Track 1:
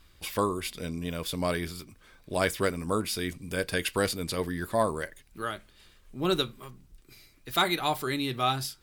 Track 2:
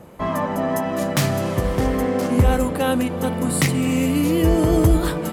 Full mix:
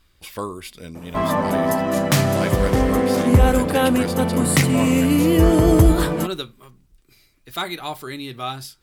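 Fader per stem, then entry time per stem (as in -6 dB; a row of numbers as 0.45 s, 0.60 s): -1.5 dB, +2.5 dB; 0.00 s, 0.95 s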